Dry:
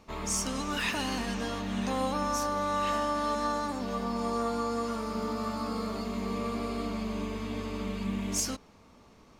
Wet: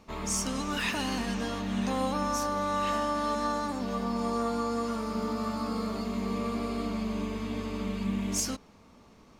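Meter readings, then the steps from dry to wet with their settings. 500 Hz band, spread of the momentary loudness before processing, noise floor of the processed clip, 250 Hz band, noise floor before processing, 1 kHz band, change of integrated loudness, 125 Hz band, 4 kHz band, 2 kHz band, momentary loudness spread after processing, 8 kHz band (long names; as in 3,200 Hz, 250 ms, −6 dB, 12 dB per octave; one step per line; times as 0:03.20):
0.0 dB, 5 LU, −56 dBFS, +2.0 dB, −57 dBFS, 0.0 dB, +0.5 dB, +1.5 dB, 0.0 dB, 0.0 dB, 4 LU, 0.0 dB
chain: parametric band 210 Hz +2.5 dB 0.77 octaves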